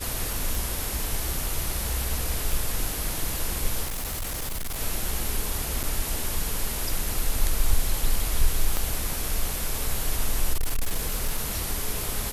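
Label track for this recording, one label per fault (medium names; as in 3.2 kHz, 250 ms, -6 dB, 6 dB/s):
0.550000	0.550000	pop
2.520000	2.520000	pop
3.840000	4.800000	clipped -27 dBFS
5.830000	5.840000	dropout 6.5 ms
8.770000	8.770000	pop -11 dBFS
10.530000	11.580000	clipped -20 dBFS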